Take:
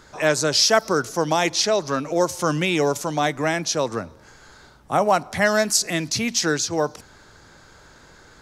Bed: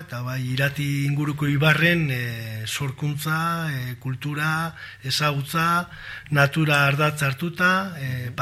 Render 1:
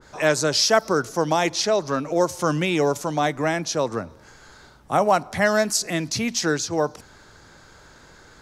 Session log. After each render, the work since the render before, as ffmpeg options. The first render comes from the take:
ffmpeg -i in.wav -af "adynamicequalizer=threshold=0.02:dfrequency=1700:dqfactor=0.7:tfrequency=1700:tqfactor=0.7:attack=5:release=100:ratio=0.375:range=2:mode=cutabove:tftype=highshelf" out.wav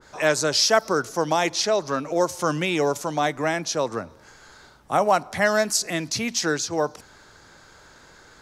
ffmpeg -i in.wav -af "lowshelf=frequency=300:gain=-5" out.wav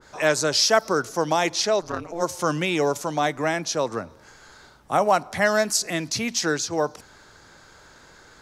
ffmpeg -i in.wav -filter_complex "[0:a]asplit=3[link_01][link_02][link_03];[link_01]afade=type=out:start_time=1.8:duration=0.02[link_04];[link_02]tremolo=f=170:d=1,afade=type=in:start_time=1.8:duration=0.02,afade=type=out:start_time=2.22:duration=0.02[link_05];[link_03]afade=type=in:start_time=2.22:duration=0.02[link_06];[link_04][link_05][link_06]amix=inputs=3:normalize=0" out.wav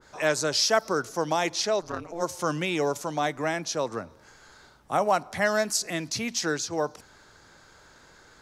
ffmpeg -i in.wav -af "volume=-4dB" out.wav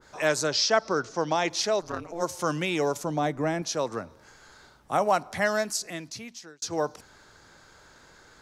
ffmpeg -i in.wav -filter_complex "[0:a]asettb=1/sr,asplit=3[link_01][link_02][link_03];[link_01]atrim=end=0.474[link_04];[link_02]atrim=start=0.47:end=1.5,asetpts=PTS-STARTPTS,afade=type=in:duration=0.004:curve=qsin,afade=type=out:start_time=1.026:duration=0.004:curve=qsin,lowpass=frequency=6200:width=0.5412,lowpass=frequency=6200:width=1.3066[link_05];[link_03]atrim=start=1.496[link_06];[link_04][link_05]acrossfade=duration=0.004:curve1=hsin:curve2=qsin[link_07];[link_07][link_06]acrossfade=duration=0.004:curve1=qsin:curve2=hsin,asettb=1/sr,asplit=3[link_08][link_09][link_10];[link_08]atrim=end=3.034[link_11];[link_09]atrim=start=3.03:end=3.62,asetpts=PTS-STARTPTS,afade=type=in:duration=0.004:curve=qsin,afade=type=out:start_time=0.586:duration=0.004:curve=qsin,tiltshelf=frequency=670:gain=6[link_12];[link_10]atrim=start=3.616[link_13];[link_11][link_12]acrossfade=duration=0.004:curve1=hsin:curve2=qsin[link_14];[link_14][link_13]acrossfade=duration=0.004:curve1=qsin:curve2=hsin,asplit=2[link_15][link_16];[link_15]atrim=end=6.62,asetpts=PTS-STARTPTS,afade=type=out:start_time=5.34:duration=1.28[link_17];[link_16]atrim=start=6.62,asetpts=PTS-STARTPTS,afade=type=in:duration=0.004:curve=hsin[link_18];[link_17][link_18]concat=n=2:v=0:a=1" out.wav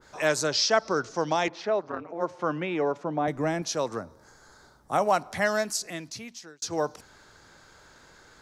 ffmpeg -i in.wav -filter_complex "[0:a]asettb=1/sr,asplit=3[link_01][link_02][link_03];[link_01]atrim=end=1.484[link_04];[link_02]atrim=start=1.48:end=3.28,asetpts=PTS-STARTPTS,afade=type=in:duration=0.004:curve=qsin,afade=type=out:start_time=1.796:duration=0.004:curve=qsin,highpass=170,lowpass=2000[link_05];[link_03]atrim=start=3.276[link_06];[link_04][link_05]acrossfade=duration=0.004:curve1=hsin:curve2=qsin[link_07];[link_07][link_06]acrossfade=duration=0.004:curve1=qsin:curve2=hsin,asettb=1/sr,asplit=3[link_08][link_09][link_10];[link_08]atrim=end=3.974[link_11];[link_09]atrim=start=3.97:end=4.93,asetpts=PTS-STARTPTS,afade=type=in:duration=0.004:curve=qsin,afade=type=out:start_time=0.956:duration=0.004:curve=qsin,equalizer=frequency=2700:width_type=o:width=0.76:gain=-13[link_12];[link_10]atrim=start=4.926[link_13];[link_11][link_12]acrossfade=duration=0.004:curve1=hsin:curve2=qsin[link_14];[link_14][link_13]acrossfade=duration=0.004:curve1=qsin:curve2=hsin" out.wav

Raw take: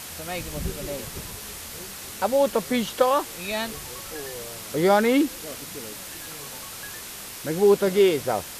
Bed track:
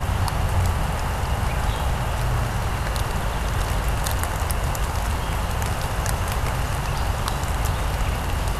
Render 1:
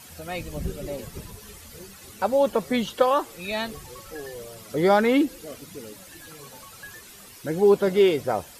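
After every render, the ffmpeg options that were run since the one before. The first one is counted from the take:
ffmpeg -i in.wav -af "afftdn=noise_reduction=12:noise_floor=-38" out.wav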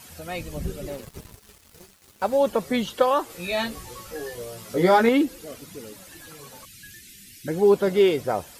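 ffmpeg -i in.wav -filter_complex "[0:a]asettb=1/sr,asplit=3[link_01][link_02][link_03];[link_01]atrim=end=0.894[link_04];[link_02]atrim=start=0.89:end=2.37,asetpts=PTS-STARTPTS,afade=type=in:duration=0.004:curve=qsin,afade=type=out:start_time=1.476:duration=0.004:curve=qsin,aeval=exprs='sgn(val(0))*max(abs(val(0))-0.00668,0)':channel_layout=same[link_05];[link_03]atrim=start=2.366[link_06];[link_04][link_05]acrossfade=duration=0.004:curve1=hsin:curve2=qsin[link_07];[link_07][link_06]acrossfade=duration=0.004:curve1=qsin:curve2=hsin,asettb=1/sr,asplit=3[link_08][link_09][link_10];[link_08]atrim=end=3.284[link_11];[link_09]atrim=start=3.28:end=5.09,asetpts=PTS-STARTPTS,afade=type=in:duration=0.004:curve=qsin,afade=type=out:start_time=1.806:duration=0.004:curve=qsin,asplit=2[link_12][link_13];[link_13]adelay=17,volume=-2dB[link_14];[link_12][link_14]amix=inputs=2:normalize=0,atrim=end_sample=79821[link_15];[link_10]atrim=start=5.086[link_16];[link_11][link_15]acrossfade=duration=0.004:curve1=hsin:curve2=qsin[link_17];[link_17][link_16]acrossfade=duration=0.004:curve1=qsin:curve2=hsin,asettb=1/sr,asplit=3[link_18][link_19][link_20];[link_18]atrim=end=6.654[link_21];[link_19]atrim=start=6.65:end=7.48,asetpts=PTS-STARTPTS,afade=type=in:duration=0.004:curve=qsin,afade=type=out:start_time=0.826:duration=0.004:curve=qsin,asuperstop=centerf=770:order=8:qfactor=0.52[link_22];[link_20]atrim=start=7.476[link_23];[link_21][link_22]acrossfade=duration=0.004:curve1=hsin:curve2=qsin[link_24];[link_24][link_23]acrossfade=duration=0.004:curve1=qsin:curve2=hsin" out.wav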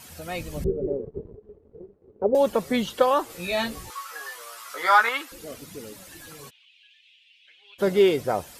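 ffmpeg -i in.wav -filter_complex "[0:a]asettb=1/sr,asplit=3[link_01][link_02][link_03];[link_01]atrim=end=0.644[link_04];[link_02]atrim=start=0.64:end=2.35,asetpts=PTS-STARTPTS,afade=type=in:duration=0.004:curve=qsin,afade=type=out:start_time=1.706:duration=0.004:curve=qsin,lowpass=frequency=430:width_type=q:width=5.3[link_05];[link_03]atrim=start=2.346[link_06];[link_04][link_05]acrossfade=duration=0.004:curve1=hsin:curve2=qsin[link_07];[link_07][link_06]acrossfade=duration=0.004:curve1=qsin:curve2=hsin,asettb=1/sr,asplit=3[link_08][link_09][link_10];[link_08]atrim=end=3.904[link_11];[link_09]atrim=start=3.9:end=5.32,asetpts=PTS-STARTPTS,afade=type=in:duration=0.004:curve=qsin,afade=type=out:start_time=1.416:duration=0.004:curve=qsin,highpass=frequency=1200:width_type=q:width=3.2[link_12];[link_10]atrim=start=5.316[link_13];[link_11][link_12]acrossfade=duration=0.004:curve1=hsin:curve2=qsin[link_14];[link_14][link_13]acrossfade=duration=0.004:curve1=qsin:curve2=hsin,asplit=3[link_15][link_16][link_17];[link_15]afade=type=out:start_time=6.49:duration=0.02[link_18];[link_16]asuperpass=centerf=2900:order=4:qfactor=2.8,afade=type=in:start_time=6.49:duration=0.02,afade=type=out:start_time=7.78:duration=0.02[link_19];[link_17]afade=type=in:start_time=7.78:duration=0.02[link_20];[link_18][link_19][link_20]amix=inputs=3:normalize=0" out.wav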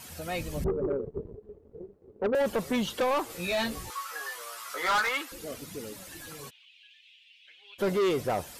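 ffmpeg -i in.wav -af "asoftclip=type=tanh:threshold=-22.5dB" out.wav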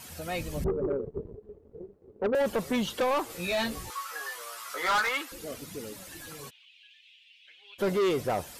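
ffmpeg -i in.wav -af anull out.wav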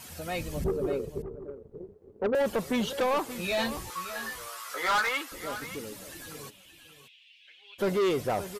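ffmpeg -i in.wav -af "aecho=1:1:578:0.224" out.wav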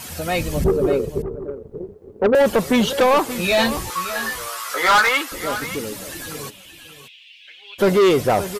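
ffmpeg -i in.wav -af "volume=11.5dB" out.wav

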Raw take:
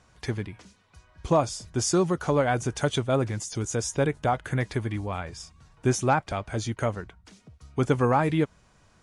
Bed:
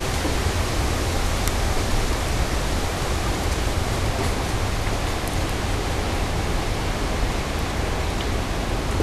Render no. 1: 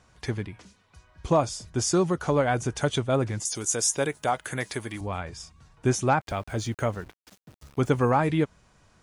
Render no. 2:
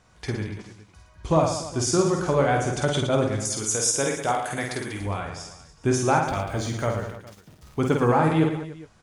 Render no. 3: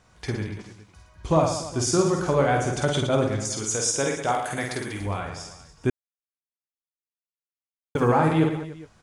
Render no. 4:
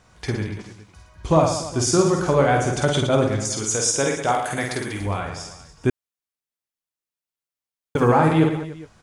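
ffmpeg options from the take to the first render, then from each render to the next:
ffmpeg -i in.wav -filter_complex "[0:a]asettb=1/sr,asplit=3[link_01][link_02][link_03];[link_01]atrim=end=3.454[link_04];[link_02]atrim=start=3.45:end=5.01,asetpts=PTS-STARTPTS,afade=type=in:duration=0.004:curve=qsin,afade=type=out:start_time=1.556:duration=0.004:curve=qsin,aemphasis=mode=production:type=bsi[link_05];[link_03]atrim=start=5.006[link_06];[link_04][link_05]acrossfade=duration=0.004:curve1=hsin:curve2=qsin[link_07];[link_07][link_06]acrossfade=duration=0.004:curve1=qsin:curve2=hsin,asettb=1/sr,asplit=3[link_08][link_09][link_10];[link_08]atrim=end=6.214[link_11];[link_09]atrim=start=6.21:end=8.1,asetpts=PTS-STARTPTS,afade=type=in:duration=0.004:curve=qsin,afade=type=out:start_time=1.886:duration=0.004:curve=qsin,aeval=exprs='val(0)*gte(abs(val(0)),0.00422)':channel_layout=same[link_12];[link_10]atrim=start=8.096[link_13];[link_11][link_12]acrossfade=duration=0.004:curve1=hsin:curve2=qsin[link_14];[link_14][link_13]acrossfade=duration=0.004:curve1=qsin:curve2=hsin" out.wav
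ffmpeg -i in.wav -filter_complex "[0:a]asplit=2[link_01][link_02];[link_02]adelay=19,volume=-11.5dB[link_03];[link_01][link_03]amix=inputs=2:normalize=0,aecho=1:1:50|112.5|190.6|288.3|410.4:0.631|0.398|0.251|0.158|0.1" out.wav
ffmpeg -i in.wav -filter_complex "[0:a]asettb=1/sr,asplit=3[link_01][link_02][link_03];[link_01]atrim=end=3.344[link_04];[link_02]atrim=start=3.34:end=4.32,asetpts=PTS-STARTPTS,afade=type=in:duration=0.004:curve=qsin,afade=type=out:start_time=0.976:duration=0.004:curve=qsin,lowpass=8000[link_05];[link_03]atrim=start=4.316[link_06];[link_04][link_05]acrossfade=duration=0.004:curve1=hsin:curve2=qsin[link_07];[link_07][link_06]acrossfade=duration=0.004:curve1=qsin:curve2=hsin,asplit=3[link_08][link_09][link_10];[link_08]atrim=end=5.9,asetpts=PTS-STARTPTS,afade=type=out:start_time=5.896:duration=0.004:curve=hsin[link_11];[link_09]atrim=start=5.9:end=7.95,asetpts=PTS-STARTPTS,volume=0[link_12];[link_10]atrim=start=7.95,asetpts=PTS-STARTPTS,afade=type=in:duration=0.004:curve=hsin[link_13];[link_11][link_12][link_13]concat=n=3:v=0:a=1" out.wav
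ffmpeg -i in.wav -af "volume=3.5dB" out.wav

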